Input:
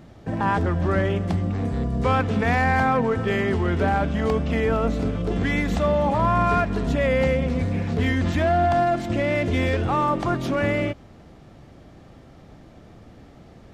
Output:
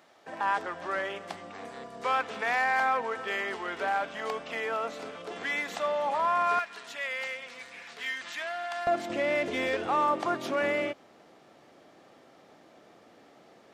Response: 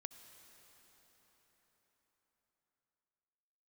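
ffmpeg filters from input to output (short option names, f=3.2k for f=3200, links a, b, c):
-af "asetnsamples=n=441:p=0,asendcmd='6.59 highpass f 1500;8.87 highpass f 400',highpass=720,volume=-3dB"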